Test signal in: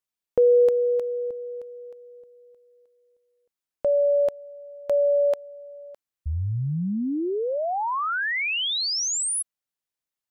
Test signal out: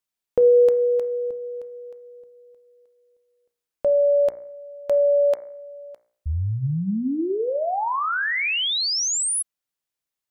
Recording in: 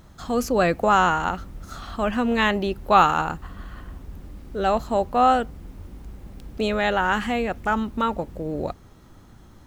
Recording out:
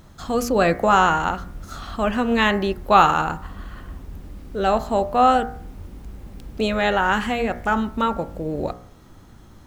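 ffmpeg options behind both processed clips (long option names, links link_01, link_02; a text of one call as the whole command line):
ffmpeg -i in.wav -af "bandreject=frequency=59.71:width_type=h:width=4,bandreject=frequency=119.42:width_type=h:width=4,bandreject=frequency=179.13:width_type=h:width=4,bandreject=frequency=238.84:width_type=h:width=4,bandreject=frequency=298.55:width_type=h:width=4,bandreject=frequency=358.26:width_type=h:width=4,bandreject=frequency=417.97:width_type=h:width=4,bandreject=frequency=477.68:width_type=h:width=4,bandreject=frequency=537.39:width_type=h:width=4,bandreject=frequency=597.1:width_type=h:width=4,bandreject=frequency=656.81:width_type=h:width=4,bandreject=frequency=716.52:width_type=h:width=4,bandreject=frequency=776.23:width_type=h:width=4,bandreject=frequency=835.94:width_type=h:width=4,bandreject=frequency=895.65:width_type=h:width=4,bandreject=frequency=955.36:width_type=h:width=4,bandreject=frequency=1015.07:width_type=h:width=4,bandreject=frequency=1074.78:width_type=h:width=4,bandreject=frequency=1134.49:width_type=h:width=4,bandreject=frequency=1194.2:width_type=h:width=4,bandreject=frequency=1253.91:width_type=h:width=4,bandreject=frequency=1313.62:width_type=h:width=4,bandreject=frequency=1373.33:width_type=h:width=4,bandreject=frequency=1433.04:width_type=h:width=4,bandreject=frequency=1492.75:width_type=h:width=4,bandreject=frequency=1552.46:width_type=h:width=4,bandreject=frequency=1612.17:width_type=h:width=4,bandreject=frequency=1671.88:width_type=h:width=4,bandreject=frequency=1731.59:width_type=h:width=4,bandreject=frequency=1791.3:width_type=h:width=4,bandreject=frequency=1851.01:width_type=h:width=4,bandreject=frequency=1910.72:width_type=h:width=4,bandreject=frequency=1970.43:width_type=h:width=4,bandreject=frequency=2030.14:width_type=h:width=4,bandreject=frequency=2089.85:width_type=h:width=4,bandreject=frequency=2149.56:width_type=h:width=4,bandreject=frequency=2209.27:width_type=h:width=4,bandreject=frequency=2268.98:width_type=h:width=4,volume=2.5dB" out.wav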